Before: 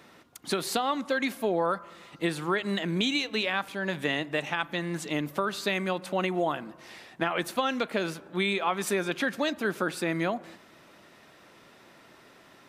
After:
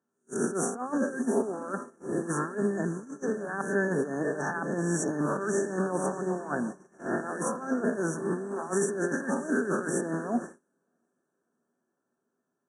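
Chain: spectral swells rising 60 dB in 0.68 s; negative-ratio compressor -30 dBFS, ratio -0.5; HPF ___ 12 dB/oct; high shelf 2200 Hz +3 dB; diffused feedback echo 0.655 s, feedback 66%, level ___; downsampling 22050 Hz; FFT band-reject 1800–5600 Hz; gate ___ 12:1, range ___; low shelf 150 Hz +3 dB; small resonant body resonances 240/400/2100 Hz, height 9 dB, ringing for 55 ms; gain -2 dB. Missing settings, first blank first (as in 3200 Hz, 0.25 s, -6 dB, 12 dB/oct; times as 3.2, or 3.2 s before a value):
100 Hz, -14.5 dB, -36 dBFS, -35 dB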